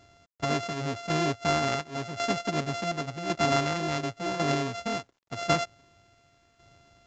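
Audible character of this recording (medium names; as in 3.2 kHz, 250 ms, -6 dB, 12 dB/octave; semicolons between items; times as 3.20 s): a buzz of ramps at a fixed pitch in blocks of 64 samples; tremolo saw down 0.91 Hz, depth 65%; a quantiser's noise floor 12-bit, dither none; µ-law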